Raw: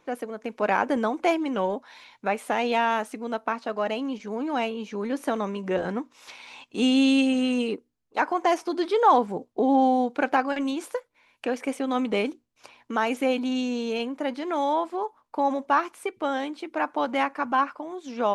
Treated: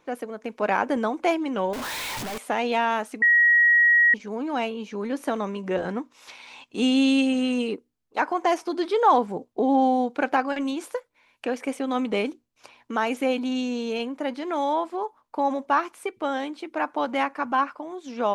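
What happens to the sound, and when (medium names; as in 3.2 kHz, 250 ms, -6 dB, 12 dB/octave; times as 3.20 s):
1.73–2.38 s: one-bit comparator
3.22–4.14 s: bleep 1.9 kHz -14 dBFS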